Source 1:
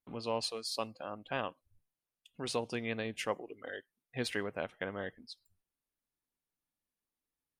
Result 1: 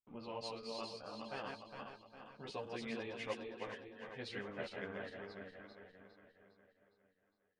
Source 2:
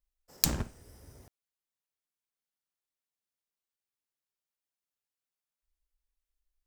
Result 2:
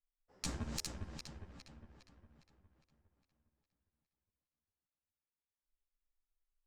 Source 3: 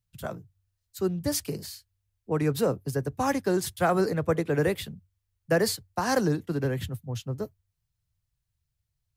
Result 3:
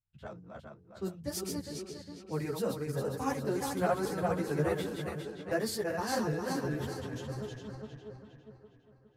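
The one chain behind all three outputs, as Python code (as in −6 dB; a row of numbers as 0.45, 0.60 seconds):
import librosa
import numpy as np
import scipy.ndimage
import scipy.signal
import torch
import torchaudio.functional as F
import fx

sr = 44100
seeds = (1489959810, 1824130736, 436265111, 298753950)

y = fx.reverse_delay_fb(x, sr, ms=204, feedback_pct=71, wet_db=-3.0)
y = fx.env_lowpass(y, sr, base_hz=2400.0, full_db=-22.5)
y = fx.ensemble(y, sr)
y = y * librosa.db_to_amplitude(-6.0)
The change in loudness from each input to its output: −7.5, −13.5, −6.5 LU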